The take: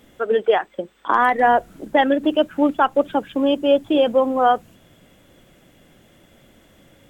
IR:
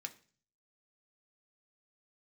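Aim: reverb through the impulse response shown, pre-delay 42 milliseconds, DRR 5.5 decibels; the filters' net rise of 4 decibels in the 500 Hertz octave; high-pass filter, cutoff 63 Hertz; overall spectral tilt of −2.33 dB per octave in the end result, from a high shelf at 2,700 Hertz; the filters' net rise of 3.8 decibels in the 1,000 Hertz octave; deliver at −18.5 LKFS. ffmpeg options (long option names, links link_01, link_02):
-filter_complex "[0:a]highpass=63,equalizer=frequency=500:width_type=o:gain=3.5,equalizer=frequency=1000:width_type=o:gain=4.5,highshelf=frequency=2700:gain=-6,asplit=2[link_01][link_02];[1:a]atrim=start_sample=2205,adelay=42[link_03];[link_02][link_03]afir=irnorm=-1:irlink=0,volume=-2.5dB[link_04];[link_01][link_04]amix=inputs=2:normalize=0,volume=-3.5dB"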